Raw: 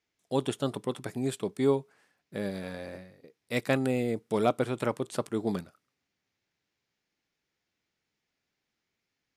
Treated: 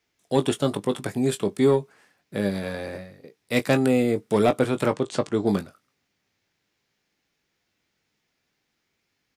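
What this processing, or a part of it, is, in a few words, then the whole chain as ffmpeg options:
one-band saturation: -filter_complex "[0:a]asettb=1/sr,asplit=3[s0][s1][s2];[s0]atrim=end=4.914[s3];[s1]atrim=start=4.91:end=5.46,asetpts=PTS-STARTPTS,afade=t=in:d=0.004:c=qsin,afade=t=out:st=0.546:d=0.004:c=qsin,lowpass=f=7600:w=0.5412,lowpass=f=7600:w=1.3066[s4];[s2]atrim=start=5.456[s5];[s3][s4]acrossfade=d=0.004:c1=hsin:c2=qsin[s6];[s6][s5]acrossfade=d=0.004:c1=qsin:c2=hsin,acrossover=split=360|4000[s7][s8][s9];[s8]asoftclip=type=tanh:threshold=0.075[s10];[s7][s10][s9]amix=inputs=3:normalize=0,asplit=2[s11][s12];[s12]adelay=20,volume=0.316[s13];[s11][s13]amix=inputs=2:normalize=0,volume=2.37"

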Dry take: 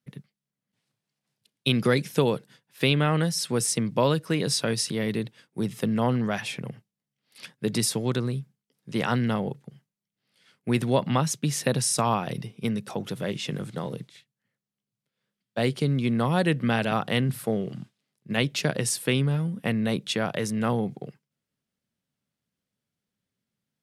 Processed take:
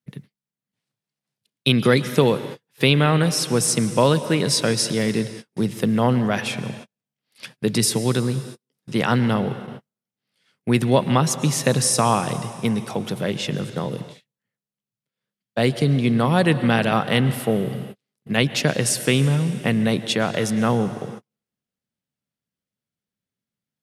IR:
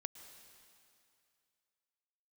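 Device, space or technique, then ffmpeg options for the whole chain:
keyed gated reverb: -filter_complex "[0:a]asplit=3[s0][s1][s2];[1:a]atrim=start_sample=2205[s3];[s1][s3]afir=irnorm=-1:irlink=0[s4];[s2]apad=whole_len=1050708[s5];[s4][s5]sidechaingate=range=0.00282:threshold=0.00447:ratio=16:detection=peak,volume=3.35[s6];[s0][s6]amix=inputs=2:normalize=0,volume=0.596"

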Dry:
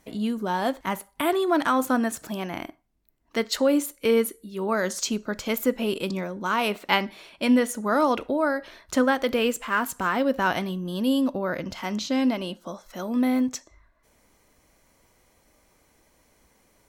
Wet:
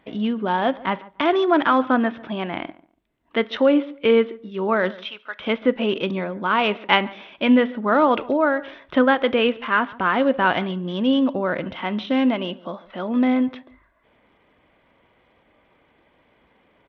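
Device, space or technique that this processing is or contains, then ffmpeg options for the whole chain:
Bluetooth headset: -filter_complex "[0:a]asettb=1/sr,asplit=3[s0][s1][s2];[s0]atrim=end=4.964[s3];[s1]atrim=start=4.96:end=5.4,asetpts=PTS-STARTPTS,afade=t=in:d=0.004:c=qsin,afade=t=out:st=0.436:d=0.004:c=qsin,highpass=1200[s4];[s2]atrim=start=5.396[s5];[s3][s4]acrossfade=d=0.004:c1=hsin:c2=qsin[s6];[s6][s5]acrossfade=d=0.004:c1=qsin:c2=hsin,highpass=f=140:p=1,asplit=2[s7][s8];[s8]adelay=143,lowpass=f=1400:p=1,volume=0.106,asplit=2[s9][s10];[s10]adelay=143,lowpass=f=1400:p=1,volume=0.23[s11];[s7][s9][s11]amix=inputs=3:normalize=0,aresample=8000,aresample=44100,volume=1.78" -ar 32000 -c:a sbc -b:a 64k

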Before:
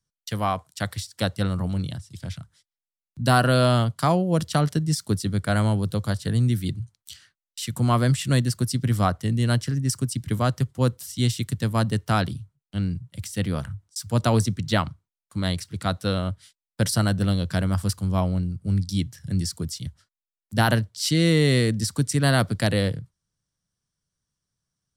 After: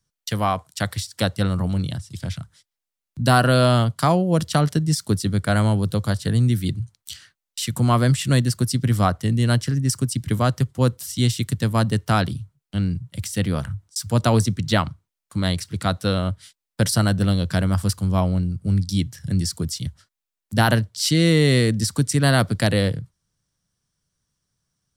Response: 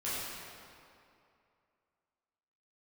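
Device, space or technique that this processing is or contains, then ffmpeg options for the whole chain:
parallel compression: -filter_complex "[0:a]asplit=2[s0][s1];[s1]acompressor=threshold=0.0251:ratio=6,volume=0.708[s2];[s0][s2]amix=inputs=2:normalize=0,volume=1.19"

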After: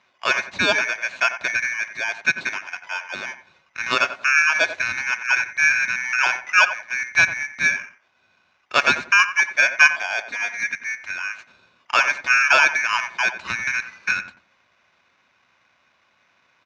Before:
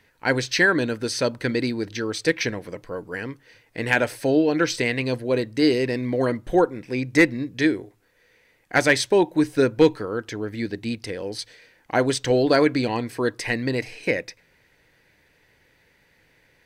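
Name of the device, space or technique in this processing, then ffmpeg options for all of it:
ring modulator pedal into a guitar cabinet: -filter_complex "[0:a]highshelf=f=1700:t=q:w=3:g=-11.5,aeval=exprs='val(0)*sgn(sin(2*PI*2000*n/s))':c=same,highpass=100,equalizer=f=140:t=q:w=4:g=-5,equalizer=f=310:t=q:w=4:g=-6,equalizer=f=450:t=q:w=4:g=-10,equalizer=f=1900:t=q:w=4:g=-8,equalizer=f=3200:t=q:w=4:g=-10,lowpass=f=4500:w=0.5412,lowpass=f=4500:w=1.3066,asettb=1/sr,asplit=3[s0][s1][s2];[s0]atrim=end=10.294[s3];[s1]atrim=start=10.29:end=10.74,asetpts=PTS-STARTPTS,afade=t=in:d=0.004:c=qsin,afade=t=out:st=0.446:d=0.004:c=qsin,aecho=1:1:4.2:0.9,atrim=end_sample=19845[s4];[s2]atrim=start=10.736[s5];[s3][s4]acrossfade=d=0.004:c1=hsin:c2=qsin[s6];[s6][s5]acrossfade=d=0.004:c1=qsin:c2=hsin,asplit=2[s7][s8];[s8]adelay=90,lowpass=f=1200:p=1,volume=0.376,asplit=2[s9][s10];[s10]adelay=90,lowpass=f=1200:p=1,volume=0.27,asplit=2[s11][s12];[s12]adelay=90,lowpass=f=1200:p=1,volume=0.27[s13];[s7][s9][s11][s13]amix=inputs=4:normalize=0,volume=1.78"

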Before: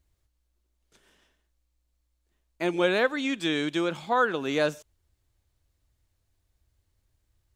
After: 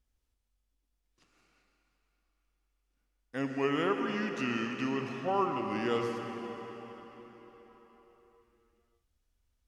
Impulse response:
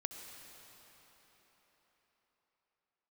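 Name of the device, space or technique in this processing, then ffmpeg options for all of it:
slowed and reverbed: -filter_complex "[0:a]asetrate=34398,aresample=44100[s0];[1:a]atrim=start_sample=2205[s1];[s0][s1]afir=irnorm=-1:irlink=0,volume=0.596"

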